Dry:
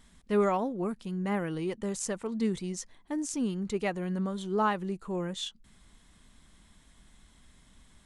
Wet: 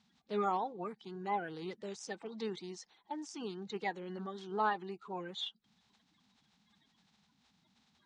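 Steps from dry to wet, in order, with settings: bin magnitudes rounded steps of 30 dB; speaker cabinet 230–5900 Hz, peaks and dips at 260 Hz -7 dB, 570 Hz -8 dB, 810 Hz +9 dB, 3800 Hz +6 dB; gain -6 dB

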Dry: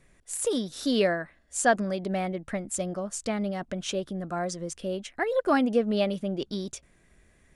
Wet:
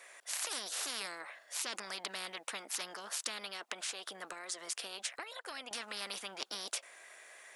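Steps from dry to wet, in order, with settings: HPF 610 Hz 24 dB/oct; 3.38–5.71 compressor 6:1, threshold -39 dBFS, peak gain reduction 16.5 dB; spectral compressor 10:1; gain -7 dB

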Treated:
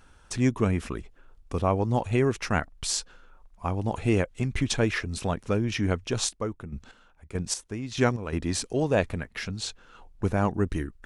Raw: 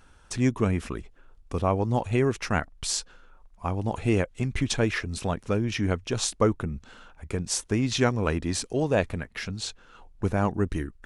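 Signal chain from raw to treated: 6.1–8.33 chopper 1.6 Hz, depth 65%, duty 30%

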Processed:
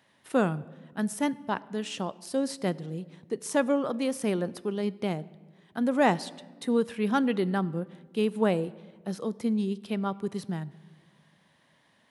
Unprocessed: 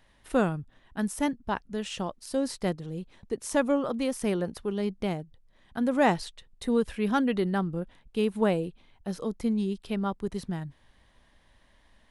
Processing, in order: HPF 120 Hz 24 dB/oct; on a send: reverb RT60 1.5 s, pre-delay 11 ms, DRR 19 dB

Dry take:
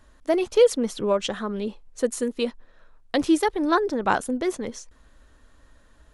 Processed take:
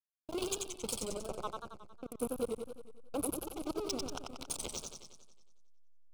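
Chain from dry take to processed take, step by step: random spectral dropouts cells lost 27%; low-pass opened by the level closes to 1900 Hz, open at -21 dBFS; pre-emphasis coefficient 0.97; 0.96–3.33 spectral gain 1700–9200 Hz -25 dB; 2.14–3.36 high shelf 4400 Hz +6.5 dB; negative-ratio compressor -44 dBFS, ratio -0.5; backlash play -37 dBFS; 4.09–4.5 flipped gate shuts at -36 dBFS, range -37 dB; Butterworth band-stop 1800 Hz, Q 1.7; warbling echo 91 ms, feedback 59%, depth 119 cents, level -3.5 dB; gain +10.5 dB

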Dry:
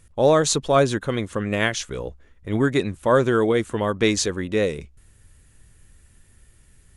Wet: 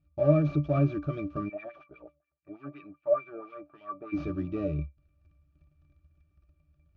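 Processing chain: CVSD 32 kbps; sample leveller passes 2; octave resonator D, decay 0.16 s; 1.48–4.12 LFO band-pass sine 9.5 Hz -> 2.6 Hz 550–2700 Hz

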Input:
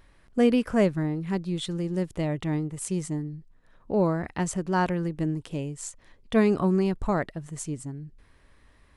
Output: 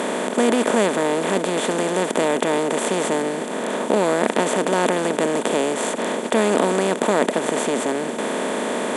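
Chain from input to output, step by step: per-bin compression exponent 0.2; HPF 230 Hz 24 dB/oct

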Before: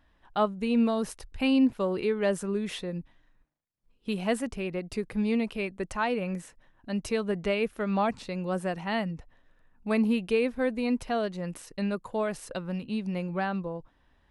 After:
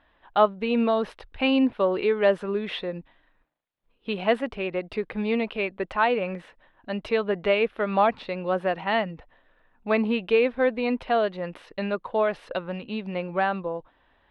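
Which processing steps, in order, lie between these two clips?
EQ curve 160 Hz 0 dB, 580 Hz +11 dB, 3600 Hz +9 dB, 7000 Hz -16 dB; gain -3.5 dB

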